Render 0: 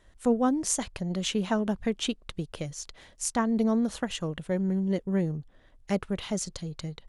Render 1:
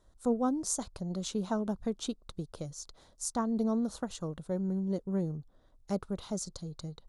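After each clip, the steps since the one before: high-order bell 2.3 kHz -12.5 dB 1.1 oct; trim -5 dB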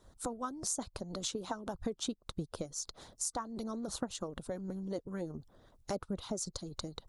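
harmonic-percussive split harmonic -16 dB; compression 3:1, threshold -48 dBFS, peak gain reduction 13.5 dB; trim +10.5 dB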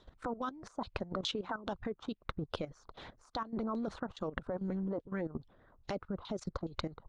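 LFO low-pass saw down 2.4 Hz 990–3800 Hz; level held to a coarse grid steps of 14 dB; trim +6.5 dB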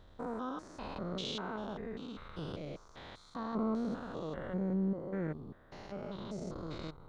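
spectrogram pixelated in time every 200 ms; trim +4.5 dB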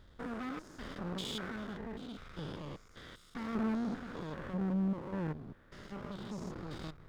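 comb filter that takes the minimum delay 0.59 ms

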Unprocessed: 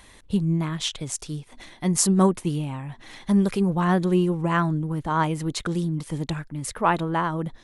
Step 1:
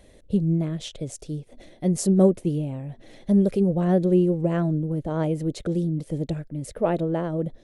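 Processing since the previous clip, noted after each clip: resonant low shelf 760 Hz +9 dB, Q 3; trim -9 dB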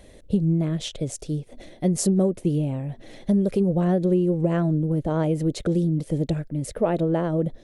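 compression 6:1, threshold -21 dBFS, peak gain reduction 9.5 dB; trim +4 dB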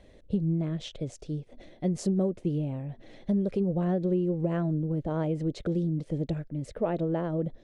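distance through air 94 m; trim -6 dB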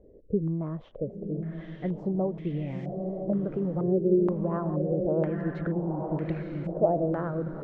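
echo that smears into a reverb 940 ms, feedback 57%, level -5.5 dB; step-sequenced low-pass 2.1 Hz 430–2200 Hz; trim -3 dB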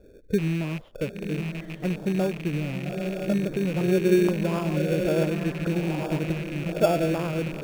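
rattle on loud lows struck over -38 dBFS, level -29 dBFS; in parallel at -6.5 dB: sample-and-hold 22×

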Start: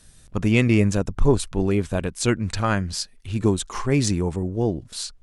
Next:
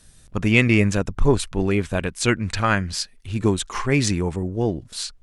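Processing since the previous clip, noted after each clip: dynamic bell 2.1 kHz, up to +7 dB, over -41 dBFS, Q 0.83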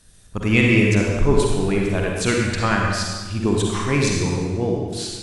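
reverberation RT60 1.4 s, pre-delay 42 ms, DRR -1.5 dB; trim -2 dB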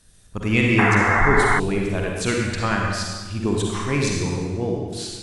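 painted sound noise, 0.78–1.60 s, 670–2200 Hz -17 dBFS; trim -2.5 dB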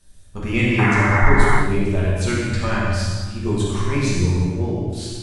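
peaking EQ 74 Hz +9 dB 0.65 oct; simulated room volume 100 m³, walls mixed, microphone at 1.2 m; trim -5.5 dB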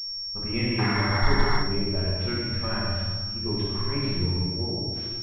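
class-D stage that switches slowly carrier 5.5 kHz; trim -8 dB

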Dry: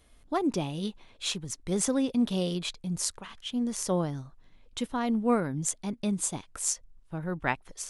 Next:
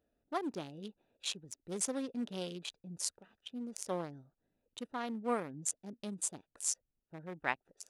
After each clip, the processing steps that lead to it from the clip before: local Wiener filter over 41 samples; high-pass 610 Hz 6 dB/octave; trim -3.5 dB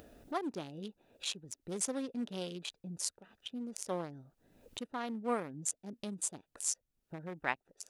upward compressor, threshold -38 dBFS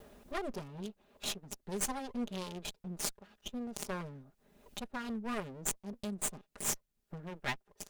comb filter that takes the minimum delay 4.9 ms; trim +2.5 dB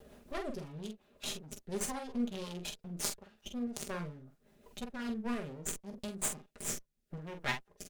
rotary cabinet horn 5.5 Hz, later 0.8 Hz, at 4.99 s; early reflections 13 ms -10 dB, 46 ms -6.5 dB; trim +1 dB

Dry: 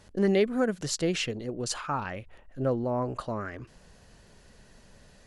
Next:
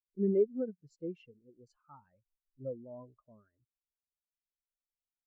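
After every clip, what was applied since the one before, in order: spectral contrast expander 2.5:1; trim -4.5 dB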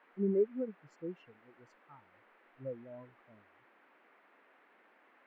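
band noise 240–2100 Hz -64 dBFS; trim -2 dB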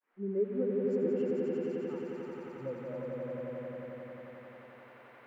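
fade-in on the opening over 0.56 s; echo with a slow build-up 89 ms, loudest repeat 5, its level -3 dB; trim +2 dB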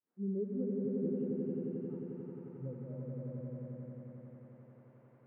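band-pass filter 140 Hz, Q 1.7; reverberation RT60 5.1 s, pre-delay 73 ms, DRR 14 dB; trim +5.5 dB

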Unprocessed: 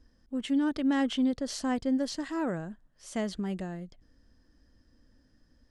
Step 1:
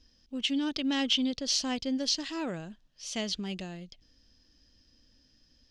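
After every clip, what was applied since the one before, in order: high-order bell 3.9 kHz +15 dB; trim -3.5 dB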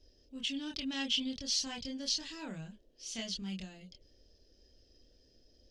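peaking EQ 620 Hz -9 dB 2.9 oct; chorus voices 6, 0.42 Hz, delay 26 ms, depth 1.1 ms; band noise 240–580 Hz -73 dBFS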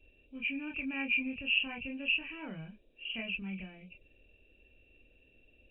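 knee-point frequency compression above 2.2 kHz 4:1

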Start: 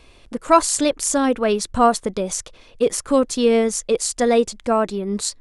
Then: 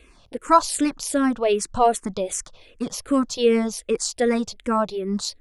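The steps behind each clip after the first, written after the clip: barber-pole phaser -2.6 Hz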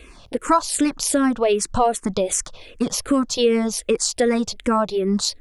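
compression 2.5:1, threshold -26 dBFS, peak gain reduction 11.5 dB; trim +8 dB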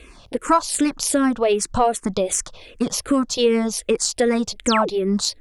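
painted sound fall, 4.66–4.89 s, 290–9400 Hz -24 dBFS; Chebyshev shaper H 3 -28 dB, 4 -35 dB, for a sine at -3.5 dBFS; trim +1 dB

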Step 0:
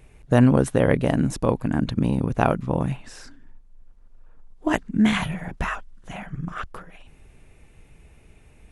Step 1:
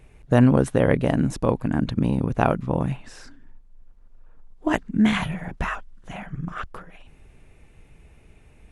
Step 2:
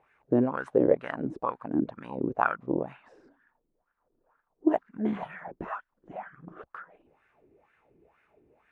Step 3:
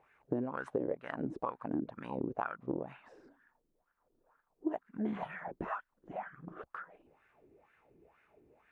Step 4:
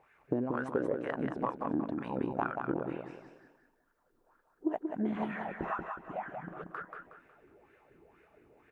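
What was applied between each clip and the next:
treble shelf 5.5 kHz -4.5 dB
wah-wah 2.1 Hz 320–1600 Hz, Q 4.3; trim +5 dB
compression 6:1, threshold -30 dBFS, peak gain reduction 14 dB; trim -1.5 dB
feedback delay 183 ms, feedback 33%, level -5 dB; trim +2.5 dB

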